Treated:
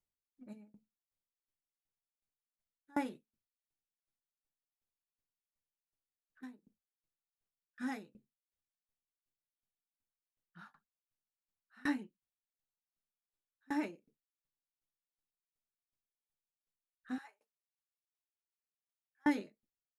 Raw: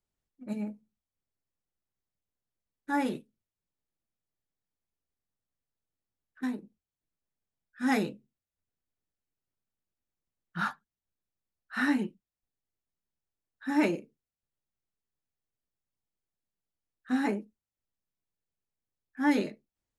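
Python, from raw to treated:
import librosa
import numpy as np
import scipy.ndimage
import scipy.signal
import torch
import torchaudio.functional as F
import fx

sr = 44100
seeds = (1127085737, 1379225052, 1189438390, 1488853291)

y = fx.highpass(x, sr, hz=750.0, slope=24, at=(17.18, 19.26))
y = fx.tremolo_decay(y, sr, direction='decaying', hz=2.7, depth_db=31)
y = F.gain(torch.from_numpy(y), -3.0).numpy()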